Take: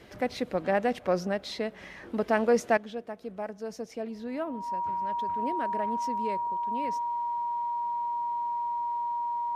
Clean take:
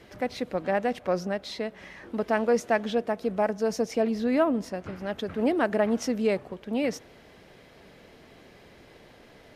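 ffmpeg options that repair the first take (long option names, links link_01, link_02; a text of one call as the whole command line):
ffmpeg -i in.wav -af "bandreject=frequency=950:width=30,asetnsamples=nb_out_samples=441:pad=0,asendcmd='2.77 volume volume 10.5dB',volume=0dB" out.wav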